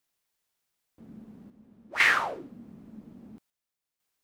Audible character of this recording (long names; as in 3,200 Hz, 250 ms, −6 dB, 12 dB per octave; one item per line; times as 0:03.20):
chopped level 0.5 Hz, depth 60%, duty 75%